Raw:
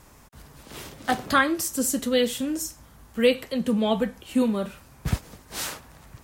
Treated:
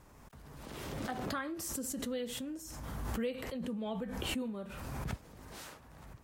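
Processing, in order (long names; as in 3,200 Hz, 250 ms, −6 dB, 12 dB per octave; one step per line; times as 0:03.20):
downward compressor 1.5 to 1, threshold −47 dBFS, peak gain reduction 11.5 dB
high-shelf EQ 2,200 Hz −7.5 dB
background raised ahead of every attack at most 25 dB per second
level −6 dB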